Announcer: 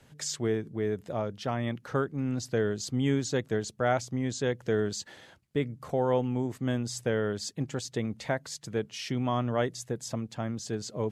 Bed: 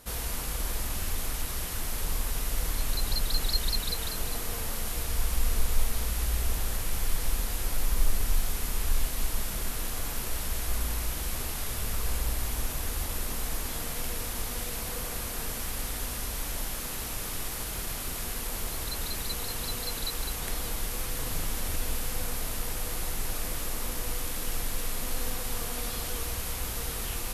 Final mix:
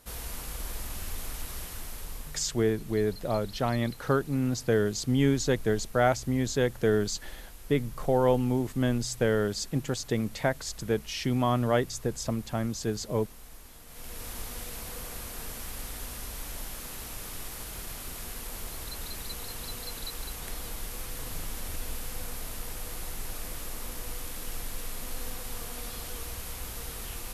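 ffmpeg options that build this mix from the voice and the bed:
ffmpeg -i stem1.wav -i stem2.wav -filter_complex "[0:a]adelay=2150,volume=3dB[link_01];[1:a]volume=6.5dB,afade=type=out:start_time=1.57:duration=0.99:silence=0.266073,afade=type=in:start_time=13.86:duration=0.44:silence=0.266073[link_02];[link_01][link_02]amix=inputs=2:normalize=0" out.wav

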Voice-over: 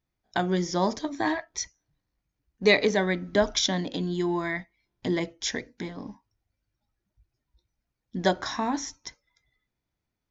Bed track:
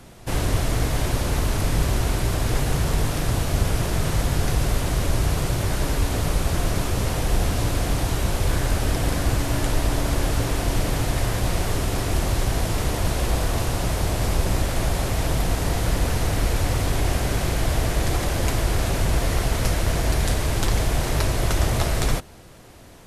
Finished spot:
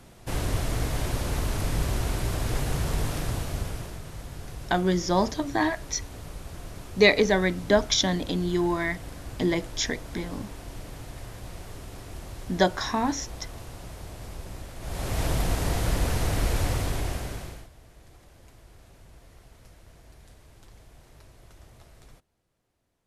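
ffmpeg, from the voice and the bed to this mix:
ffmpeg -i stem1.wav -i stem2.wav -filter_complex "[0:a]adelay=4350,volume=2dB[link_01];[1:a]volume=8.5dB,afade=type=out:start_time=3.14:duration=0.88:silence=0.251189,afade=type=in:start_time=14.8:duration=0.42:silence=0.199526,afade=type=out:start_time=16.63:duration=1.06:silence=0.0446684[link_02];[link_01][link_02]amix=inputs=2:normalize=0" out.wav

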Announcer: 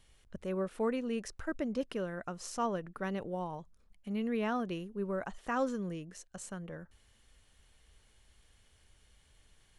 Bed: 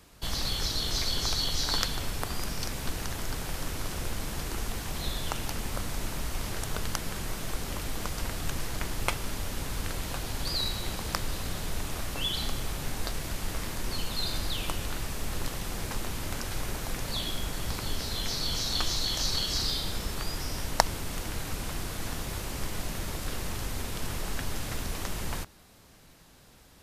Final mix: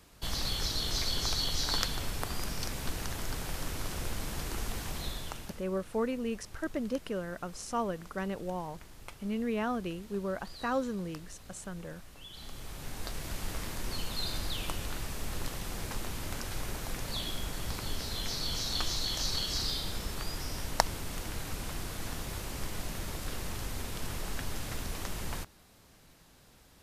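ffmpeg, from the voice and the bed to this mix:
ffmpeg -i stem1.wav -i stem2.wav -filter_complex "[0:a]adelay=5150,volume=1dB[link_01];[1:a]volume=12.5dB,afade=type=out:start_time=4.86:duration=0.79:silence=0.158489,afade=type=in:start_time=12.29:duration=1.08:silence=0.177828[link_02];[link_01][link_02]amix=inputs=2:normalize=0" out.wav

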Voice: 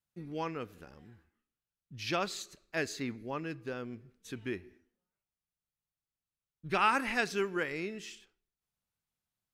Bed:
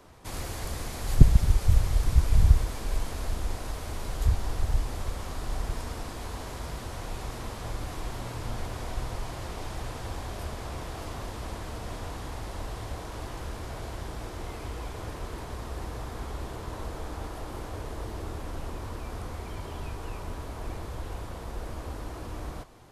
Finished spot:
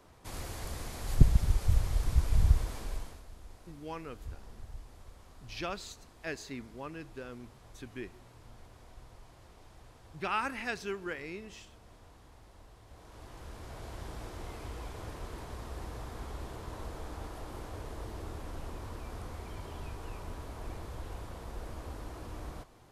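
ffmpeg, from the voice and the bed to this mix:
ffmpeg -i stem1.wav -i stem2.wav -filter_complex "[0:a]adelay=3500,volume=-5dB[link_01];[1:a]volume=8.5dB,afade=type=out:start_time=2.77:duration=0.46:silence=0.199526,afade=type=in:start_time=12.85:duration=1.25:silence=0.199526[link_02];[link_01][link_02]amix=inputs=2:normalize=0" out.wav

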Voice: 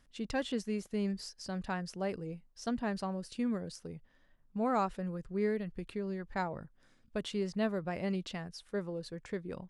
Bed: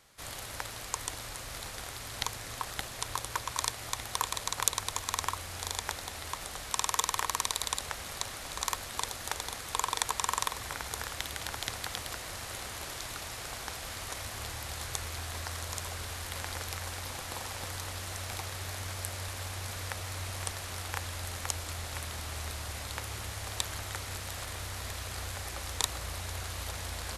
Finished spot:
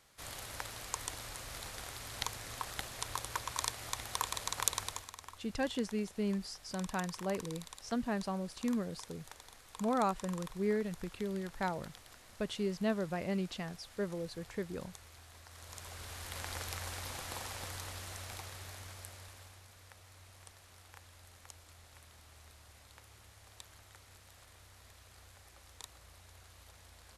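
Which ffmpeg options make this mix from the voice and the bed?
ffmpeg -i stem1.wav -i stem2.wav -filter_complex "[0:a]adelay=5250,volume=-0.5dB[link_01];[1:a]volume=10dB,afade=type=out:start_time=4.82:duration=0.3:silence=0.211349,afade=type=in:start_time=15.48:duration=1.09:silence=0.199526,afade=type=out:start_time=17.32:duration=2.35:silence=0.158489[link_02];[link_01][link_02]amix=inputs=2:normalize=0" out.wav

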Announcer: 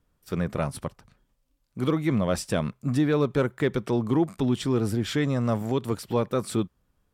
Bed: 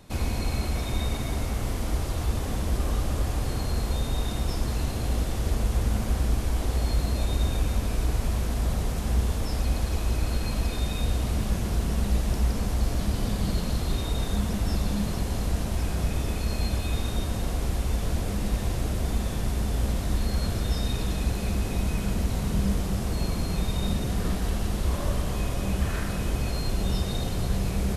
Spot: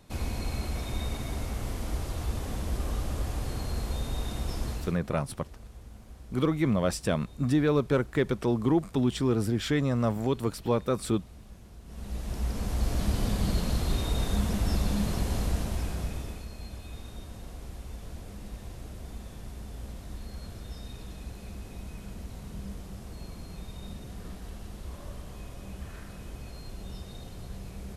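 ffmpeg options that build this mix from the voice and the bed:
ffmpeg -i stem1.wav -i stem2.wav -filter_complex "[0:a]adelay=4550,volume=-1.5dB[link_01];[1:a]volume=16.5dB,afade=type=out:start_time=4.69:duration=0.3:silence=0.133352,afade=type=in:start_time=11.84:duration=1.25:silence=0.0841395,afade=type=out:start_time=15.37:duration=1.13:silence=0.211349[link_02];[link_01][link_02]amix=inputs=2:normalize=0" out.wav

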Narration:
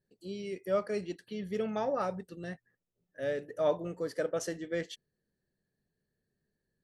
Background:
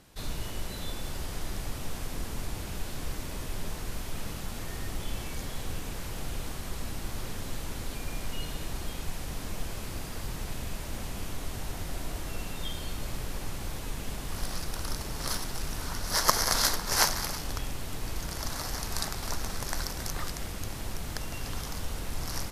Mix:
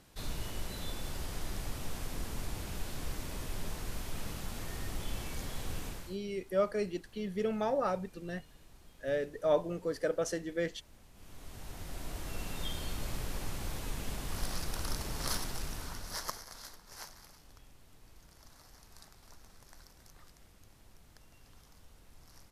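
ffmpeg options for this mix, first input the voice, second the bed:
ffmpeg -i stem1.wav -i stem2.wav -filter_complex "[0:a]adelay=5850,volume=0.5dB[link_01];[1:a]volume=16.5dB,afade=type=out:start_time=5.85:duration=0.33:silence=0.112202,afade=type=in:start_time=11.13:duration=1.46:silence=0.1,afade=type=out:start_time=15.38:duration=1.06:silence=0.0891251[link_02];[link_01][link_02]amix=inputs=2:normalize=0" out.wav

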